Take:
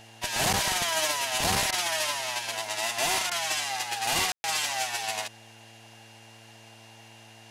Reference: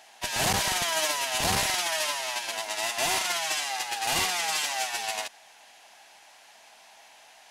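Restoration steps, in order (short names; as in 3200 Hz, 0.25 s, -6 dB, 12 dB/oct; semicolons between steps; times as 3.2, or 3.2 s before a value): de-hum 112.3 Hz, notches 6; notch 2800 Hz, Q 30; room tone fill 4.32–4.44; interpolate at 1.71/3.3, 13 ms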